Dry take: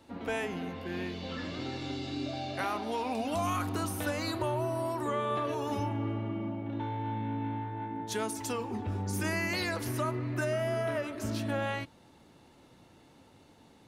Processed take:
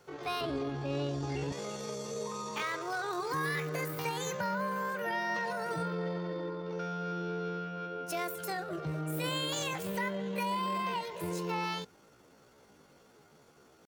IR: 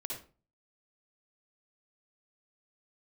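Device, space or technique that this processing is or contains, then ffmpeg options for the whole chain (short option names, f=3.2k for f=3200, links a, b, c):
chipmunk voice: -filter_complex "[0:a]asettb=1/sr,asplit=3[a][b][c];[a]atrim=end=0.414[d];[b]atrim=start=0.41:end=1.54,asetpts=PTS-STARTPTS,afade=t=in:d=0.004:c=qsin,afade=t=out:st=1.126:d=0.004:c=qsin,aemphasis=mode=reproduction:type=bsi[e];[c]atrim=start=1.536[f];[d][e]acrossfade=d=0.004:c1=hsin:c2=qsin[g];[g][f]acrossfade=d=0.004:c1=qsin:c2=hsin,asetrate=70004,aresample=44100,atempo=0.629961,volume=-2dB"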